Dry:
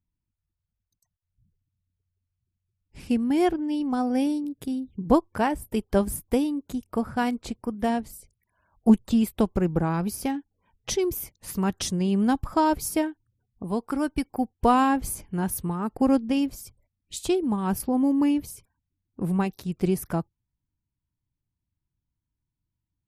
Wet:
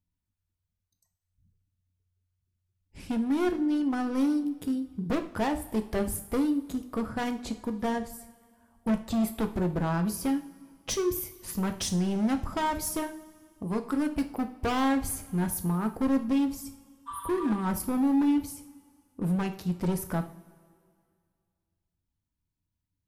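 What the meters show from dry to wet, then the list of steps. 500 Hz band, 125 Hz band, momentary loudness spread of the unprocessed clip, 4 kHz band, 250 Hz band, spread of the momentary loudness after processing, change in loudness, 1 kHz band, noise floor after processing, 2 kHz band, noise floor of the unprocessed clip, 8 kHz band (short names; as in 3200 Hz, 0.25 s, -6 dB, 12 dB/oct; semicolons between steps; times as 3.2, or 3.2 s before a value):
-5.5 dB, -2.0 dB, 10 LU, -2.5 dB, -3.5 dB, 8 LU, -3.5 dB, -6.0 dB, -84 dBFS, -2.5 dB, -85 dBFS, -1.5 dB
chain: spectral repair 17.1–17.54, 940–8900 Hz after; overloaded stage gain 23.5 dB; two-slope reverb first 0.43 s, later 2.2 s, from -18 dB, DRR 6 dB; gain -2 dB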